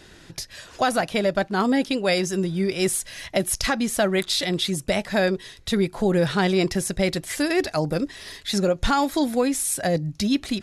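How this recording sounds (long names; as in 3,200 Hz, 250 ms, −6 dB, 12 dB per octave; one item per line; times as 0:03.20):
background noise floor −48 dBFS
spectral slope −4.0 dB per octave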